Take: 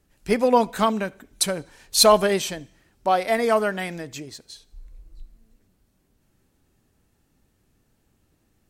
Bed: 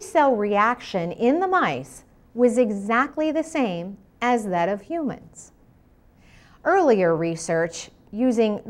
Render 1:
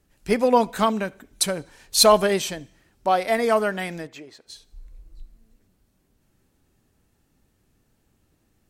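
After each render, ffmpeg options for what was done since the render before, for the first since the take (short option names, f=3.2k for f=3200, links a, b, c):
-filter_complex "[0:a]asplit=3[a][b][c];[a]afade=t=out:st=4.06:d=0.02[d];[b]bass=f=250:g=-15,treble=f=4k:g=-14,afade=t=in:st=4.06:d=0.02,afade=t=out:st=4.46:d=0.02[e];[c]afade=t=in:st=4.46:d=0.02[f];[d][e][f]amix=inputs=3:normalize=0"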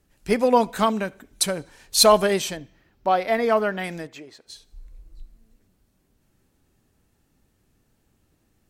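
-filter_complex "[0:a]asettb=1/sr,asplit=3[a][b][c];[a]atrim=end=2.574[d];[b]atrim=start=2.57:end=3.84,asetpts=PTS-STARTPTS,afade=t=in:d=0.004:c=qsin,afade=t=out:st=1.266:d=0.004:c=qsin,equalizer=f=8.9k:w=1.1:g=-14.5[e];[c]atrim=start=3.836[f];[d][e]acrossfade=d=0.004:c1=hsin:c2=qsin[g];[g][f]acrossfade=d=0.004:c1=qsin:c2=hsin"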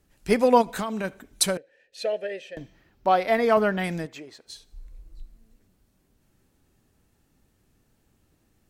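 -filter_complex "[0:a]asplit=3[a][b][c];[a]afade=t=out:st=0.61:d=0.02[d];[b]acompressor=threshold=-25dB:ratio=12:attack=3.2:release=140:knee=1:detection=peak,afade=t=in:st=0.61:d=0.02,afade=t=out:st=1.03:d=0.02[e];[c]afade=t=in:st=1.03:d=0.02[f];[d][e][f]amix=inputs=3:normalize=0,asettb=1/sr,asplit=3[g][h][i];[g]atrim=end=1.574[j];[h]atrim=start=1.57:end=2.57,asetpts=PTS-STARTPTS,afade=t=in:d=0.004:c=qsin,afade=t=out:st=0.996:d=0.004:c=qsin,asplit=3[k][l][m];[k]bandpass=f=530:t=q:w=8,volume=0dB[n];[l]bandpass=f=1.84k:t=q:w=8,volume=-6dB[o];[m]bandpass=f=2.48k:t=q:w=8,volume=-9dB[p];[n][o][p]amix=inputs=3:normalize=0[q];[i]atrim=start=2.566[r];[j][q]acrossfade=d=0.004:c1=hsin:c2=qsin[s];[s][r]acrossfade=d=0.004:c1=qsin:c2=hsin,asettb=1/sr,asplit=3[t][u][v];[t]atrim=end=3.574[w];[u]atrim=start=3.57:end=4.06,asetpts=PTS-STARTPTS,afade=t=in:d=0.004:c=qsin,afade=t=out:st=0.486:d=0.004:c=qsin,equalizer=f=81:w=0.79:g=13.5[x];[v]atrim=start=4.056[y];[w][x]acrossfade=d=0.004:c1=hsin:c2=qsin[z];[z][y]acrossfade=d=0.004:c1=qsin:c2=hsin"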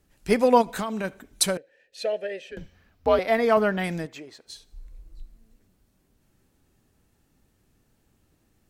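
-filter_complex "[0:a]asettb=1/sr,asplit=3[a][b][c];[a]atrim=end=2.514[d];[b]atrim=start=2.51:end=3.19,asetpts=PTS-STARTPTS,afade=t=in:d=0.004:c=qsin,afade=t=out:st=0.676:d=0.004:c=qsin,afreqshift=-120[e];[c]atrim=start=3.186[f];[d][e]acrossfade=d=0.004:c1=hsin:c2=qsin[g];[g][f]acrossfade=d=0.004:c1=qsin:c2=hsin"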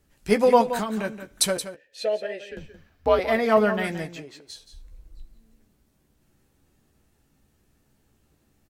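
-filter_complex "[0:a]asplit=2[a][b];[b]adelay=14,volume=-8dB[c];[a][c]amix=inputs=2:normalize=0,aecho=1:1:174:0.266"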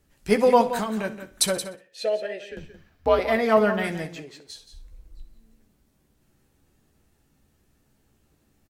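-af "aecho=1:1:63|126|189:0.158|0.0539|0.0183"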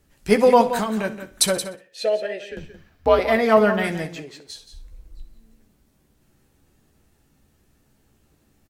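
-af "volume=3.5dB,alimiter=limit=-3dB:level=0:latency=1"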